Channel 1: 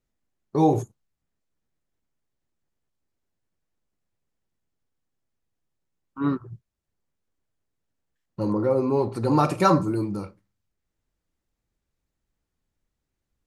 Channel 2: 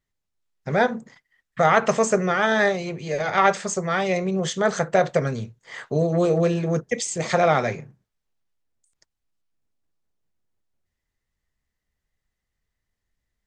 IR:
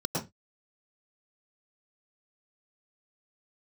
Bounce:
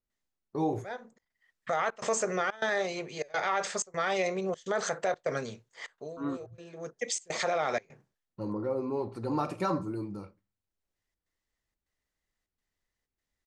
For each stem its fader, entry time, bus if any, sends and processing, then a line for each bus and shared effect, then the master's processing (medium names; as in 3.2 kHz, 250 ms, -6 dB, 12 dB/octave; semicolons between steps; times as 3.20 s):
-9.5 dB, 0.00 s, no send, peaking EQ 140 Hz -6.5 dB 0.31 oct
-3.0 dB, 0.10 s, no send, tone controls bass -14 dB, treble +5 dB; trance gate "xxxx.xxxx.x" 125 bpm -24 dB; auto duck -18 dB, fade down 0.30 s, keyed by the first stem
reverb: none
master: treble shelf 9.1 kHz -9.5 dB; peak limiter -20 dBFS, peak gain reduction 11 dB